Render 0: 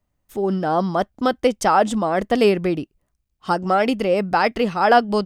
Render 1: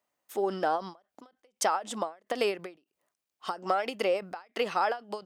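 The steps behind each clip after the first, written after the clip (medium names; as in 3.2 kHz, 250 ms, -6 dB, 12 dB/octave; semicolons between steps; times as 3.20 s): high-pass 490 Hz 12 dB/octave; compression 12:1, threshold -23 dBFS, peak gain reduction 14 dB; endings held to a fixed fall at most 210 dB/s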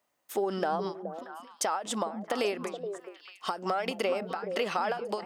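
peak limiter -19.5 dBFS, peak gain reduction 6.5 dB; compression, threshold -30 dBFS, peak gain reduction 6 dB; on a send: repeats whose band climbs or falls 211 ms, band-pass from 180 Hz, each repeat 1.4 oct, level -3 dB; on the sum: trim +4.5 dB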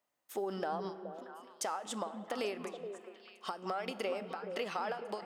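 feedback comb 64 Hz, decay 0.83 s, harmonics all, mix 40%; on a send at -15 dB: reverberation RT60 2.7 s, pre-delay 146 ms; on the sum: trim -3.5 dB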